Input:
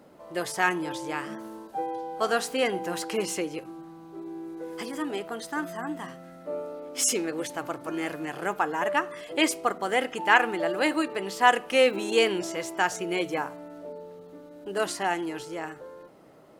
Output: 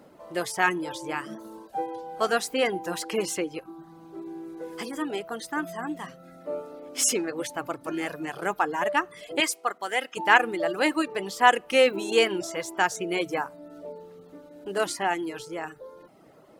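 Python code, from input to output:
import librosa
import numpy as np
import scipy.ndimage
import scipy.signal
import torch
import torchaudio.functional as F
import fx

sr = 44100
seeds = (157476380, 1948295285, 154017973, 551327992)

y = fx.highpass(x, sr, hz=890.0, slope=6, at=(9.4, 10.17))
y = fx.dereverb_blind(y, sr, rt60_s=0.64)
y = F.gain(torch.from_numpy(y), 1.5).numpy()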